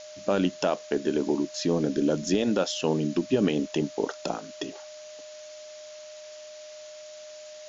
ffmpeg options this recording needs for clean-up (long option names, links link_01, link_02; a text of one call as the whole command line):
ffmpeg -i in.wav -af "bandreject=frequency=610:width=30,afftdn=noise_reduction=29:noise_floor=-44" out.wav